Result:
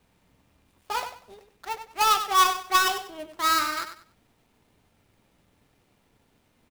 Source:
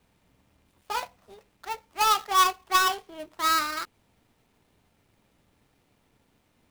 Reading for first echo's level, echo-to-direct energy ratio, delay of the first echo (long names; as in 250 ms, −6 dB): −10.0 dB, −9.5 dB, 96 ms